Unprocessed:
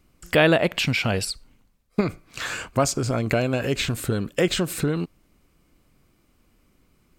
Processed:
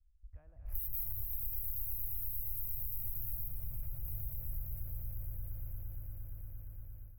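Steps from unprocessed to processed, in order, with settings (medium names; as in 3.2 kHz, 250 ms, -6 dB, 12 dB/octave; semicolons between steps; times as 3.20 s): 0.64–1.21 s: one-bit comparator; inverse Chebyshev band-stop 160–8000 Hz, stop band 50 dB; bass shelf 260 Hz -7 dB; level-controlled noise filter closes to 350 Hz, open at -36.5 dBFS; echo with a slow build-up 116 ms, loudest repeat 8, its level -5 dB; level rider gain up to 7.5 dB; 3.48–4.05 s: peaking EQ 14 kHz -6.5 dB 1.2 oct; compression, threshold -36 dBFS, peak gain reduction 8.5 dB; trim +2.5 dB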